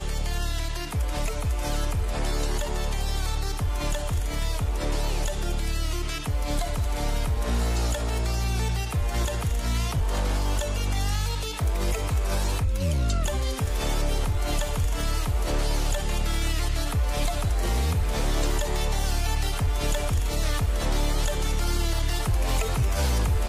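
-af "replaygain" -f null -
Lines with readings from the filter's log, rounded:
track_gain = +13.6 dB
track_peak = 0.133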